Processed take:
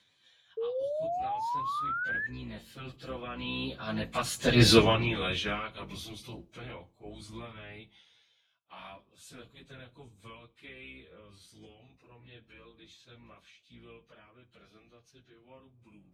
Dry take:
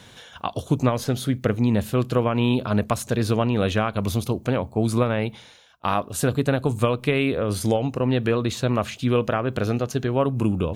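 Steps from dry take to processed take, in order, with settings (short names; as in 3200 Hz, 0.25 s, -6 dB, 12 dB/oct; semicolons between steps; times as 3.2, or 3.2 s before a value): octaver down 2 oct, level +1 dB; Doppler pass-by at 3.13, 15 m/s, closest 1.2 m; HPF 93 Hz 12 dB/oct; bell 3100 Hz +14 dB 2.2 oct; notch 2800 Hz, Q 15; plain phase-vocoder stretch 1.5×; painted sound rise, 0.57–2.27, 440–1800 Hz -37 dBFS; reverb RT60 0.30 s, pre-delay 3 ms, DRR 14.5 dB; gain +4 dB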